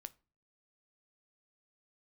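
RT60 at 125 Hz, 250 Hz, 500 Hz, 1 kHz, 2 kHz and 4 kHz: 0.55, 0.50, 0.40, 0.35, 0.30, 0.25 s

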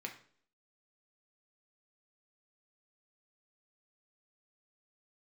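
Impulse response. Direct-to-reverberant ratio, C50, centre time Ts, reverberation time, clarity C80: 1.5 dB, 10.5 dB, 15 ms, 0.55 s, 14.5 dB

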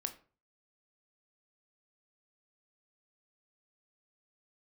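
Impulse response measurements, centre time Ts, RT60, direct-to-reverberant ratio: 7 ms, 0.40 s, 7.0 dB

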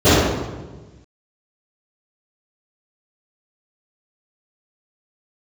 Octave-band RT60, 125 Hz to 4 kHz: 1.7, 1.5, 1.4, 1.1, 0.95, 0.90 s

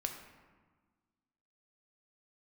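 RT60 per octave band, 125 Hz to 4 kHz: 1.7, 2.0, 1.4, 1.5, 1.2, 0.80 s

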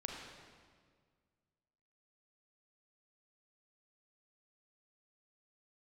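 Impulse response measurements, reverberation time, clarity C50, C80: 1.8 s, 1.0 dB, 3.0 dB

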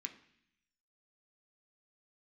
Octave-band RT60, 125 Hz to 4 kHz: 1.0, 0.95, 0.65, 0.70, 0.95, 1.0 s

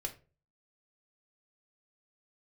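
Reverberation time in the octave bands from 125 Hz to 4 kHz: 0.55, 0.40, 0.40, 0.30, 0.30, 0.20 s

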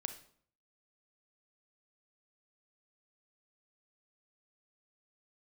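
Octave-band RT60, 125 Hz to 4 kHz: 0.70, 0.65, 0.60, 0.55, 0.50, 0.45 s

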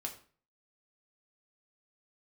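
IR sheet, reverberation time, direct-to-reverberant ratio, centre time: 0.45 s, 1.0 dB, 14 ms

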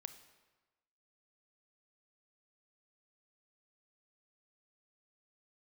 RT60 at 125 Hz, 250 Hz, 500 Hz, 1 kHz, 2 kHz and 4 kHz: 1.2, 1.2, 1.2, 1.2, 1.1, 0.95 s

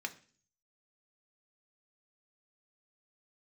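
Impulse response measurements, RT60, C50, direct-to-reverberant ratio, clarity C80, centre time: 0.45 s, 16.5 dB, 4.5 dB, 20.5 dB, 5 ms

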